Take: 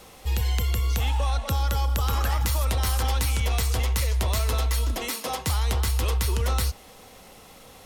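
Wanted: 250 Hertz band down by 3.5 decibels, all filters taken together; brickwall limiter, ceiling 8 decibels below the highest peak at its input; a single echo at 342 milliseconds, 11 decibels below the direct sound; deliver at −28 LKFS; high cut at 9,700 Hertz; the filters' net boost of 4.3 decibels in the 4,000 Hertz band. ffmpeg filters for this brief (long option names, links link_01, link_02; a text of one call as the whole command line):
ffmpeg -i in.wav -af "lowpass=9700,equalizer=frequency=250:width_type=o:gain=-5,equalizer=frequency=4000:width_type=o:gain=5.5,alimiter=limit=-20.5dB:level=0:latency=1,aecho=1:1:342:0.282" out.wav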